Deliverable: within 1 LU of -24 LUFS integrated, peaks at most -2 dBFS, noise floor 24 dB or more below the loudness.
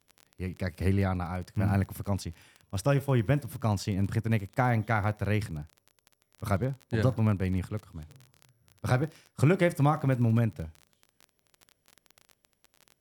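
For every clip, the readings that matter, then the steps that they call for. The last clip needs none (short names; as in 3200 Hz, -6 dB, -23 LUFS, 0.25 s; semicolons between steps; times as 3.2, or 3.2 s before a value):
ticks 26/s; loudness -29.0 LUFS; peak -10.5 dBFS; loudness target -24.0 LUFS
-> de-click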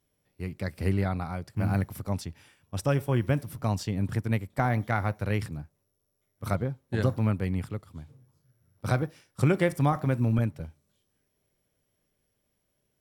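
ticks 0.31/s; loudness -29.0 LUFS; peak -10.5 dBFS; loudness target -24.0 LUFS
-> gain +5 dB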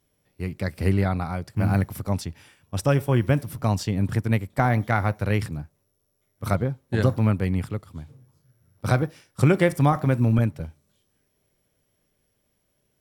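loudness -24.0 LUFS; peak -5.5 dBFS; noise floor -72 dBFS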